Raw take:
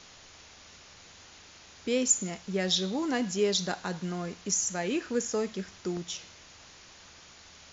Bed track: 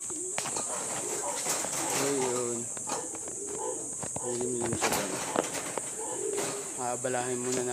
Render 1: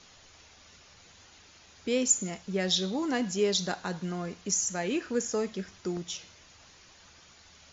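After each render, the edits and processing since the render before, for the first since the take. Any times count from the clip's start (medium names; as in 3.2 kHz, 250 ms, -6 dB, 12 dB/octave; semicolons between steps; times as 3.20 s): noise reduction 6 dB, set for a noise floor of -53 dBFS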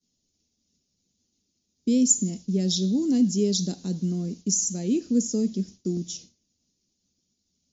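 expander -42 dBFS; FFT filter 110 Hz 0 dB, 230 Hz +13 dB, 960 Hz -19 dB, 1.6 kHz -22 dB, 5.2 kHz +4 dB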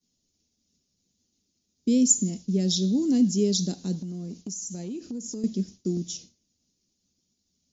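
3.95–5.44 s: compression 10:1, threshold -31 dBFS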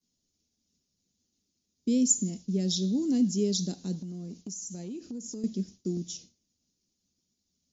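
trim -4 dB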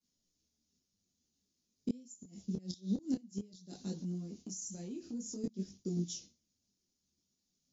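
inverted gate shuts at -20 dBFS, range -26 dB; detune thickener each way 18 cents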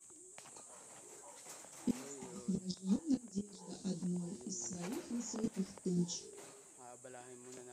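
add bed track -22 dB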